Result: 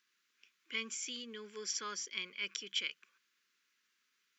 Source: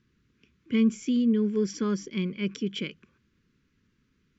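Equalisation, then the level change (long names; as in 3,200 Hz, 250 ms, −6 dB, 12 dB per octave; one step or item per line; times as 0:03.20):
high-pass filter 1,100 Hz 12 dB per octave
high-shelf EQ 4,200 Hz +8.5 dB
−2.0 dB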